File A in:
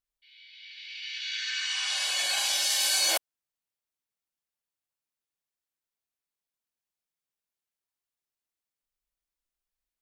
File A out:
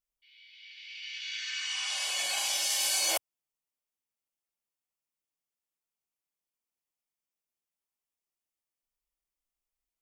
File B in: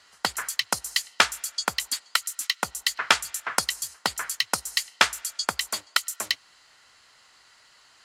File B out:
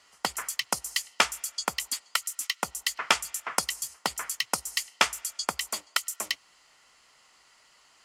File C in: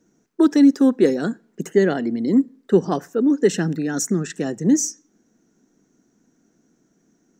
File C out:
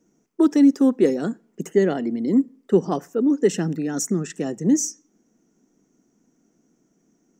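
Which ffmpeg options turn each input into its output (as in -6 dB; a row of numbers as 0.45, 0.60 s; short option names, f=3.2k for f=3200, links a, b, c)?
-af "equalizer=f=100:t=o:w=0.33:g=-11,equalizer=f=1.6k:t=o:w=0.33:g=-7,equalizer=f=4k:t=o:w=0.33:g=-7,volume=-1.5dB"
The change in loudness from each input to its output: -3.5, -3.5, -1.5 LU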